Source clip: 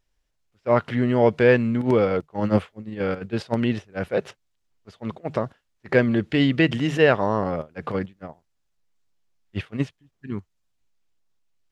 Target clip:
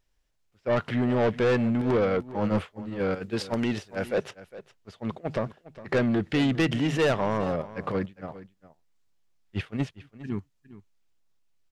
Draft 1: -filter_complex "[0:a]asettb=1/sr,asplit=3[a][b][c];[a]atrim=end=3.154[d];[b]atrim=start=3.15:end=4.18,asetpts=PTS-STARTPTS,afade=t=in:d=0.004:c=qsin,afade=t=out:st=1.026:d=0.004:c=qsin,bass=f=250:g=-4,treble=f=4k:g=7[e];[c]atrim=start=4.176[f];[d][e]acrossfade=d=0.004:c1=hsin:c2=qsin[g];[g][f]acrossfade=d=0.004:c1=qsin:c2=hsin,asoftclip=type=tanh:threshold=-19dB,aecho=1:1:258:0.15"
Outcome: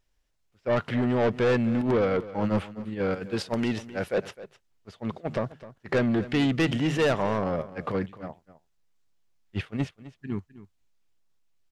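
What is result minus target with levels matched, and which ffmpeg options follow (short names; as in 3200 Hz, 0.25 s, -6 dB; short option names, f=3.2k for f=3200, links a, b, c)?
echo 0.15 s early
-filter_complex "[0:a]asettb=1/sr,asplit=3[a][b][c];[a]atrim=end=3.154[d];[b]atrim=start=3.15:end=4.18,asetpts=PTS-STARTPTS,afade=t=in:d=0.004:c=qsin,afade=t=out:st=1.026:d=0.004:c=qsin,bass=f=250:g=-4,treble=f=4k:g=7[e];[c]atrim=start=4.176[f];[d][e]acrossfade=d=0.004:c1=hsin:c2=qsin[g];[g][f]acrossfade=d=0.004:c1=qsin:c2=hsin,asoftclip=type=tanh:threshold=-19dB,aecho=1:1:408:0.15"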